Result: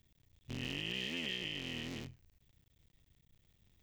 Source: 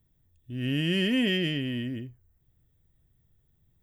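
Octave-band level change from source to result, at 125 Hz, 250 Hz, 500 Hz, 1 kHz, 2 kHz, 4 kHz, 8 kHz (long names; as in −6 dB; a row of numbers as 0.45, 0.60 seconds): −15.5 dB, −17.5 dB, −15.5 dB, −4.0 dB, −9.0 dB, −8.0 dB, can't be measured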